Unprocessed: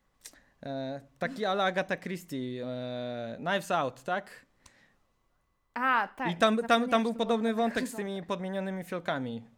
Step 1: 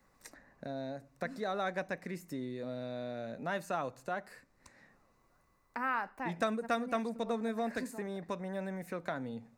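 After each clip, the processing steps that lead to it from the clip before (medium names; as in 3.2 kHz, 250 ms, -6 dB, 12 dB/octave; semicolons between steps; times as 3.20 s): peaking EQ 3.2 kHz -14 dB 0.27 oct; three bands compressed up and down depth 40%; trim -6.5 dB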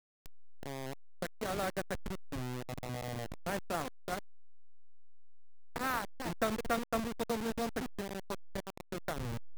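send-on-delta sampling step -31.5 dBFS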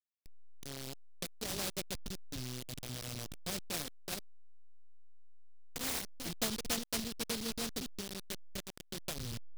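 delay time shaken by noise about 4.1 kHz, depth 0.34 ms; trim -3 dB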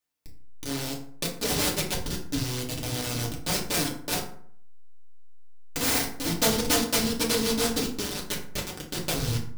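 FDN reverb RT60 0.58 s, low-frequency decay 1.1×, high-frequency decay 0.55×, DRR -3 dB; trim +8.5 dB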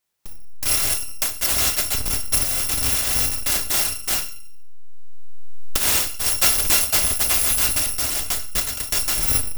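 bit-reversed sample order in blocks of 256 samples; recorder AGC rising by 10 dB/s; trim +6 dB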